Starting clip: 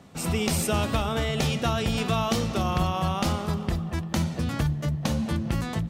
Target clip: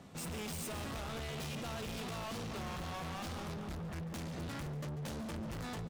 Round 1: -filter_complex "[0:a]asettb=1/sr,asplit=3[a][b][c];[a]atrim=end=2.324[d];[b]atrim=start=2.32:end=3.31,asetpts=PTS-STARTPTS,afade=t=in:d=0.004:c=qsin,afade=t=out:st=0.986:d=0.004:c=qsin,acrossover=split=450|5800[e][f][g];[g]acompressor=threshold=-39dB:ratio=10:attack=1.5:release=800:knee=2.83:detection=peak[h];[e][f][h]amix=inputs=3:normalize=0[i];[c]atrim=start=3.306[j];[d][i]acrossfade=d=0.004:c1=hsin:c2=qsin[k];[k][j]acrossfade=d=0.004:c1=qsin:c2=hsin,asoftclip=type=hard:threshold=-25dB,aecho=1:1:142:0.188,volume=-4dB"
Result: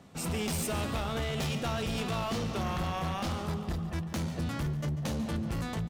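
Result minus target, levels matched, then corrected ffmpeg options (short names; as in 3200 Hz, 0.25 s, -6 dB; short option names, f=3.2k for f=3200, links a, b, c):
hard clip: distortion -6 dB
-filter_complex "[0:a]asettb=1/sr,asplit=3[a][b][c];[a]atrim=end=2.324[d];[b]atrim=start=2.32:end=3.31,asetpts=PTS-STARTPTS,afade=t=in:d=0.004:c=qsin,afade=t=out:st=0.986:d=0.004:c=qsin,acrossover=split=450|5800[e][f][g];[g]acompressor=threshold=-39dB:ratio=10:attack=1.5:release=800:knee=2.83:detection=peak[h];[e][f][h]amix=inputs=3:normalize=0[i];[c]atrim=start=3.306[j];[d][i]acrossfade=d=0.004:c1=hsin:c2=qsin[k];[k][j]acrossfade=d=0.004:c1=qsin:c2=hsin,asoftclip=type=hard:threshold=-36.5dB,aecho=1:1:142:0.188,volume=-4dB"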